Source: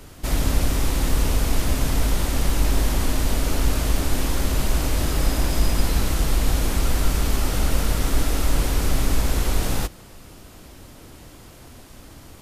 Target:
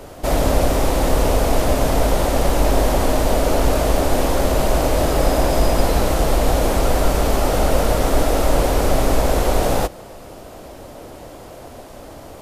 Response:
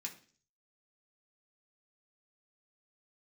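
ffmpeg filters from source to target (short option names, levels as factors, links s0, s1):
-af "equalizer=f=610:t=o:w=1.5:g=14.5,volume=1.19"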